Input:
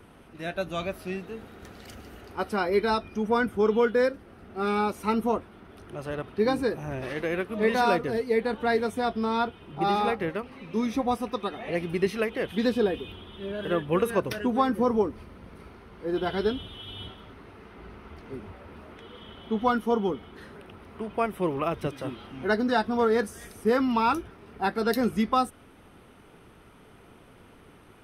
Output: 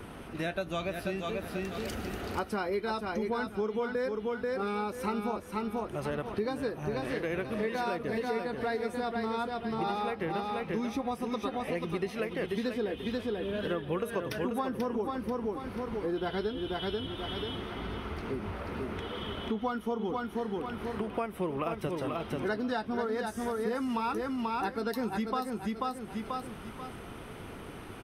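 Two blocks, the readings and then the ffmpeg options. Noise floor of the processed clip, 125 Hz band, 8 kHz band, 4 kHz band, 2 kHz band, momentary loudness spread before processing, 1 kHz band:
−45 dBFS, −2.5 dB, −3.0 dB, −3.0 dB, −5.5 dB, 21 LU, −6.0 dB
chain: -af "aecho=1:1:487|974|1461:0.531|0.138|0.0359,acompressor=threshold=-39dB:ratio=5,volume=7.5dB"

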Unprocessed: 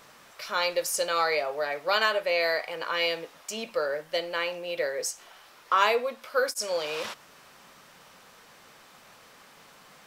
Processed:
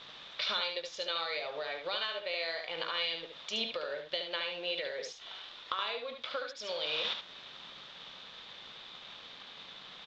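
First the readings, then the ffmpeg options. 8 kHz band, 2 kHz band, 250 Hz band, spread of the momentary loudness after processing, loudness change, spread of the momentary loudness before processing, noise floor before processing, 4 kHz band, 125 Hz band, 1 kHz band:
−18.0 dB, −9.0 dB, −8.0 dB, 14 LU, −8.0 dB, 10 LU, −54 dBFS, −1.0 dB, −7.5 dB, −12.0 dB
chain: -af "acompressor=threshold=-37dB:ratio=12,aresample=16000,aeval=exprs='sgn(val(0))*max(abs(val(0))-0.00106,0)':channel_layout=same,aresample=44100,lowpass=frequency=3600:width_type=q:width=7.2,aecho=1:1:72:0.501,volume=1.5dB"

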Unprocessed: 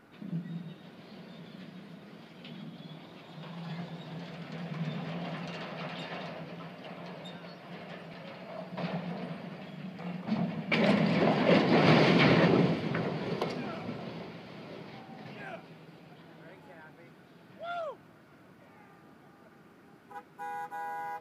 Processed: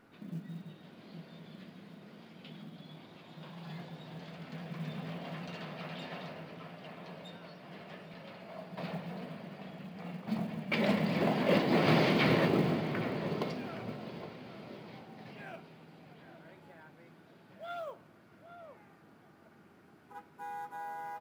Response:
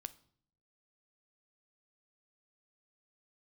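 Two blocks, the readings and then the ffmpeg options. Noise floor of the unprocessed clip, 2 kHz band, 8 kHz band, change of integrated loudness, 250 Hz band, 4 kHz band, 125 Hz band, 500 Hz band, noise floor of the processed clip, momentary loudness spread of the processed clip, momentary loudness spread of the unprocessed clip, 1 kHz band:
−57 dBFS, −4.0 dB, can't be measured, −4.0 dB, −3.5 dB, −4.0 dB, −4.0 dB, −3.5 dB, −60 dBFS, 24 LU, 23 LU, −3.5 dB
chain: -filter_complex "[1:a]atrim=start_sample=2205[link_01];[0:a][link_01]afir=irnorm=-1:irlink=0,acrusher=bits=8:mode=log:mix=0:aa=0.000001,asplit=2[link_02][link_03];[link_03]adelay=816.3,volume=-10dB,highshelf=frequency=4000:gain=-18.4[link_04];[link_02][link_04]amix=inputs=2:normalize=0"

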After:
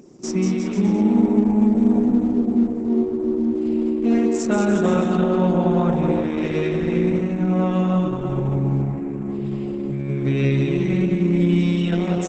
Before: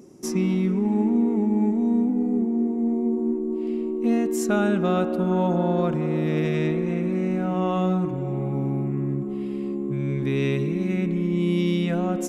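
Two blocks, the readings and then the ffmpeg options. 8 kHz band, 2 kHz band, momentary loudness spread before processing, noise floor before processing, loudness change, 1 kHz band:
+1.5 dB, +2.0 dB, 6 LU, −29 dBFS, +3.5 dB, +2.0 dB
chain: -filter_complex "[0:a]asplit=2[link_01][link_02];[link_02]aecho=0:1:190|351.5|488.8|605.5|704.6:0.631|0.398|0.251|0.158|0.1[link_03];[link_01][link_03]amix=inputs=2:normalize=0,volume=2dB" -ar 48000 -c:a libopus -b:a 10k

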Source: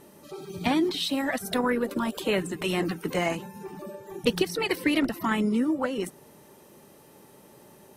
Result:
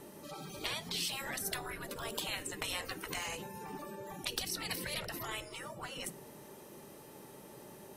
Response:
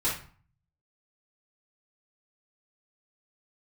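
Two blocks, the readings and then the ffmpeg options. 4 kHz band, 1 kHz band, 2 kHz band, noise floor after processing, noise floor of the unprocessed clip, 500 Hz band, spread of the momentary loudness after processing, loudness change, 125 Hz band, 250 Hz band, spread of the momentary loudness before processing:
−5.0 dB, −11.0 dB, −9.0 dB, −53 dBFS, −54 dBFS, −16.5 dB, 16 LU, −12.0 dB, −11.5 dB, −21.5 dB, 15 LU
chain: -filter_complex "[0:a]asplit=2[link_01][link_02];[1:a]atrim=start_sample=2205,afade=type=out:start_time=0.42:duration=0.01,atrim=end_sample=18963[link_03];[link_02][link_03]afir=irnorm=-1:irlink=0,volume=-25.5dB[link_04];[link_01][link_04]amix=inputs=2:normalize=0,acrossover=split=410|3000[link_05][link_06][link_07];[link_06]acompressor=threshold=-37dB:ratio=5[link_08];[link_05][link_08][link_07]amix=inputs=3:normalize=0,afftfilt=real='re*lt(hypot(re,im),0.0708)':imag='im*lt(hypot(re,im),0.0708)':win_size=1024:overlap=0.75"

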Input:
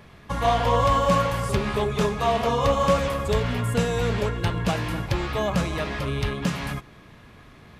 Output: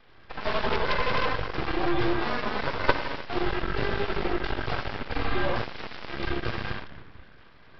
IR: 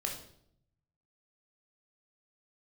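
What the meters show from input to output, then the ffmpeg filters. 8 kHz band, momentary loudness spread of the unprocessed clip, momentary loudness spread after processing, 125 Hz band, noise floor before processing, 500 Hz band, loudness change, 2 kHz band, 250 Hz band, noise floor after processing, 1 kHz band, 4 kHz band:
below −20 dB, 7 LU, 10 LU, −10.0 dB, −49 dBFS, −6.5 dB, −5.5 dB, +1.0 dB, −4.5 dB, −51 dBFS, −6.0 dB, −2.5 dB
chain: -filter_complex "[0:a]equalizer=frequency=100:width_type=o:width=0.67:gain=-11,equalizer=frequency=630:width_type=o:width=0.67:gain=3,equalizer=frequency=1600:width_type=o:width=0.67:gain=5,afreqshift=-70[link_01];[1:a]atrim=start_sample=2205,asetrate=27342,aresample=44100[link_02];[link_01][link_02]afir=irnorm=-1:irlink=0,aeval=exprs='1*(cos(1*acos(clip(val(0)/1,-1,1)))-cos(1*PI/2))+0.501*(cos(3*acos(clip(val(0)/1,-1,1)))-cos(3*PI/2))+0.0355*(cos(4*acos(clip(val(0)/1,-1,1)))-cos(4*PI/2))+0.0708*(cos(8*acos(clip(val(0)/1,-1,1)))-cos(8*PI/2))':channel_layout=same,aresample=11025,aeval=exprs='abs(val(0))':channel_layout=same,aresample=44100,volume=-4.5dB"

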